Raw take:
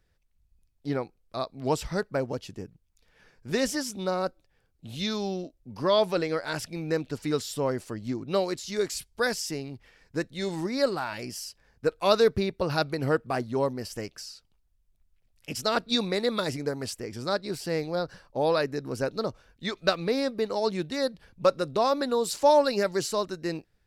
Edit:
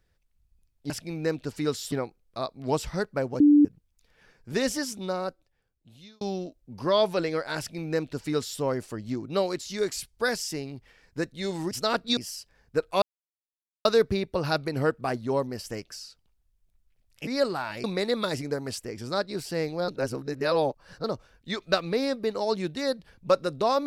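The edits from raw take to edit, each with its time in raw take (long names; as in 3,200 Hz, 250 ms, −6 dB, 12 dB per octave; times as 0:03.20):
0:02.38–0:02.63: beep over 293 Hz −13 dBFS
0:03.85–0:05.19: fade out
0:06.56–0:07.58: duplicate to 0:00.90
0:10.69–0:11.26: swap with 0:15.53–0:15.99
0:12.11: splice in silence 0.83 s
0:18.03–0:19.19: reverse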